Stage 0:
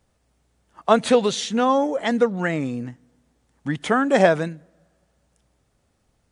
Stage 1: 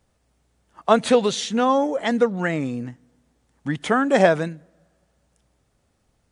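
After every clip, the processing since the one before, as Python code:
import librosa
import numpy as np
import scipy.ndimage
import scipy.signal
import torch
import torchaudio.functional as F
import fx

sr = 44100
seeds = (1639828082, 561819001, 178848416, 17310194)

y = x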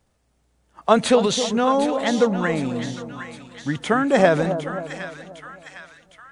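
y = fx.transient(x, sr, attack_db=2, sustain_db=6)
y = fx.echo_split(y, sr, split_hz=1100.0, low_ms=266, high_ms=758, feedback_pct=52, wet_db=-9.5)
y = F.gain(torch.from_numpy(y), -1.0).numpy()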